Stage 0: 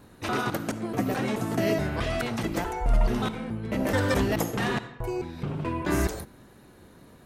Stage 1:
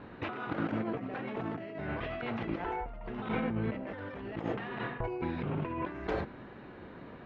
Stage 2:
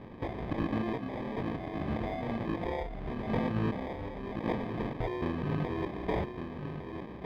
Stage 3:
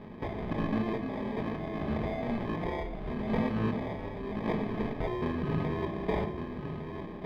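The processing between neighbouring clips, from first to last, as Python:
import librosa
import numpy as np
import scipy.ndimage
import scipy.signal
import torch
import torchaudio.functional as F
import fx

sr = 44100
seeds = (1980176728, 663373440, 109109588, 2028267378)

y1 = scipy.signal.sosfilt(scipy.signal.butter(4, 2900.0, 'lowpass', fs=sr, output='sos'), x)
y1 = fx.low_shelf(y1, sr, hz=150.0, db=-8.0)
y1 = fx.over_compress(y1, sr, threshold_db=-37.0, ratio=-1.0)
y2 = fx.sample_hold(y1, sr, seeds[0], rate_hz=1400.0, jitter_pct=0)
y2 = fx.air_absorb(y2, sr, metres=390.0)
y2 = y2 + 10.0 ** (-7.5 / 20.0) * np.pad(y2, (int(1155 * sr / 1000.0), 0))[:len(y2)]
y2 = y2 * 10.0 ** (2.5 / 20.0)
y3 = fx.room_shoebox(y2, sr, seeds[1], volume_m3=2100.0, walls='furnished', distance_m=1.4)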